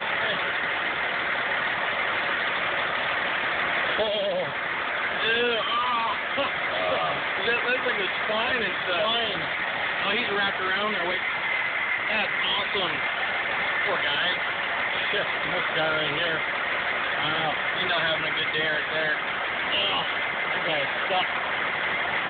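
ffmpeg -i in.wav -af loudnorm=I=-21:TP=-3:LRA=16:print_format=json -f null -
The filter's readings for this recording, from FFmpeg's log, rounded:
"input_i" : "-24.5",
"input_tp" : "-12.7",
"input_lra" : "0.6",
"input_thresh" : "-34.5",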